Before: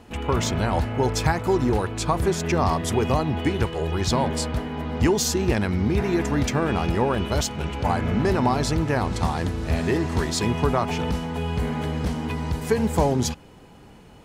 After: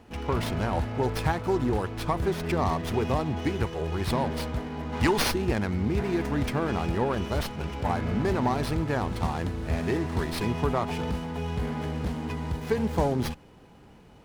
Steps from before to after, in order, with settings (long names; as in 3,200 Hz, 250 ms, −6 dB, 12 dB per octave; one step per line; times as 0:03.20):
gain on a spectral selection 0:04.93–0:05.31, 780–10,000 Hz +7 dB
windowed peak hold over 5 samples
level −4.5 dB